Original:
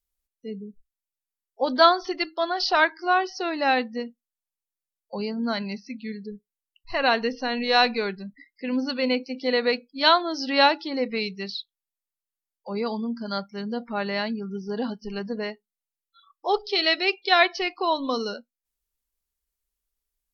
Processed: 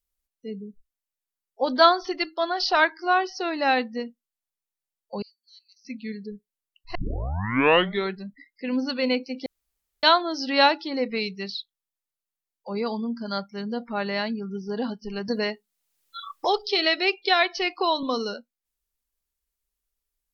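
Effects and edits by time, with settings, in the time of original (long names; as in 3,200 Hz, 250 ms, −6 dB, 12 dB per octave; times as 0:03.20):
0:05.22–0:05.85: inverse Chebyshev high-pass filter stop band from 1,100 Hz, stop band 80 dB
0:06.95: tape start 1.17 s
0:09.46–0:10.03: fill with room tone
0:15.28–0:18.03: multiband upward and downward compressor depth 70%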